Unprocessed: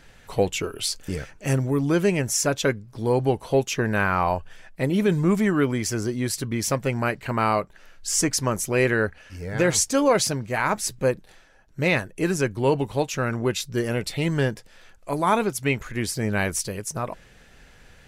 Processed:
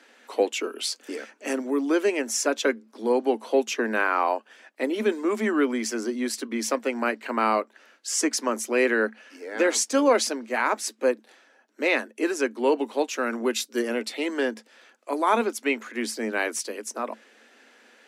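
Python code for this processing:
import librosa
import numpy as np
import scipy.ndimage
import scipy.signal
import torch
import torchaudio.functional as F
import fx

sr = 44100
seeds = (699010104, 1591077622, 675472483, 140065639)

y = fx.high_shelf(x, sr, hz=fx.line((13.12, 11000.0), (13.81, 7400.0)), db=10.5, at=(13.12, 13.81), fade=0.02)
y = scipy.signal.sosfilt(scipy.signal.cheby1(10, 1.0, 220.0, 'highpass', fs=sr, output='sos'), y)
y = fx.high_shelf(y, sr, hz=12000.0, db=-11.5)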